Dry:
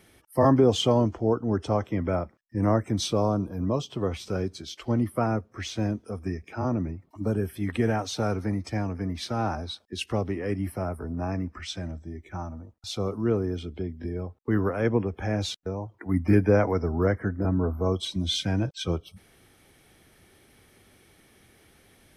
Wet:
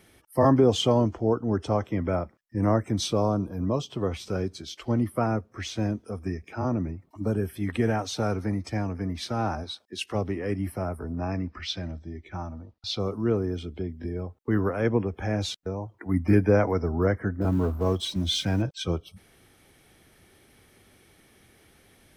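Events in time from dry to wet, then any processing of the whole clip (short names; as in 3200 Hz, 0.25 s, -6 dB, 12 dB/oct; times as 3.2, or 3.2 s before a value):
9.63–10.14 HPF 190 Hz -> 400 Hz 6 dB/oct
11.18–13 EQ curve 1500 Hz 0 dB, 4600 Hz +6 dB, 7800 Hz -11 dB
17.41–18.62 G.711 law mismatch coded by mu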